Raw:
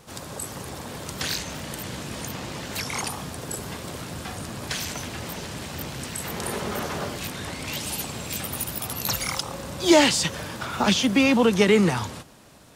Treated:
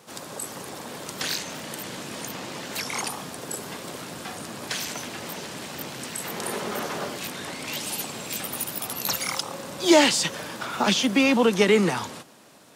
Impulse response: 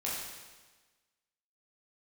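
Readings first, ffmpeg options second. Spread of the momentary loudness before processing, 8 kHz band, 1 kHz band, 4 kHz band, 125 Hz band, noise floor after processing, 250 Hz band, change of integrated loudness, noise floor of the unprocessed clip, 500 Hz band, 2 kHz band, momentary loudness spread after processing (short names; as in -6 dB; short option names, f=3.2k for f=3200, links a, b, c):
16 LU, 0.0 dB, 0.0 dB, 0.0 dB, -6.0 dB, -41 dBFS, -1.5 dB, -0.5 dB, -40 dBFS, 0.0 dB, 0.0 dB, 16 LU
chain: -af "highpass=200"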